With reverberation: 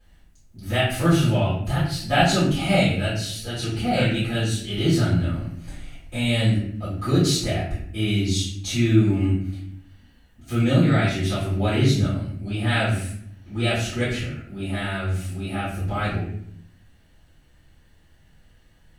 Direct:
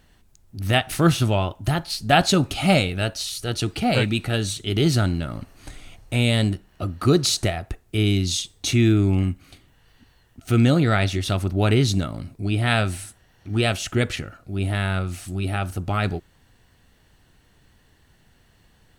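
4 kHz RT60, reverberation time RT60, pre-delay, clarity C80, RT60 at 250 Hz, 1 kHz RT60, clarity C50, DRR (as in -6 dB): 0.45 s, 0.65 s, 3 ms, 6.0 dB, 1.1 s, 0.55 s, 1.5 dB, -14.0 dB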